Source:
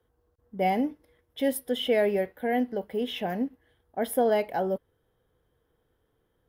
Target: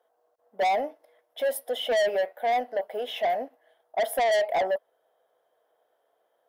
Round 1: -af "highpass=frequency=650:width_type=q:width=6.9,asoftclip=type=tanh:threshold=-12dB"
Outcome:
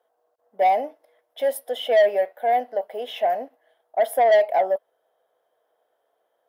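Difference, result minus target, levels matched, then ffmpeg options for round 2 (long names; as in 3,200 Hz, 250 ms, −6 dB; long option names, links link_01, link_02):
soft clipping: distortion −6 dB
-af "highpass=frequency=650:width_type=q:width=6.9,asoftclip=type=tanh:threshold=-21dB"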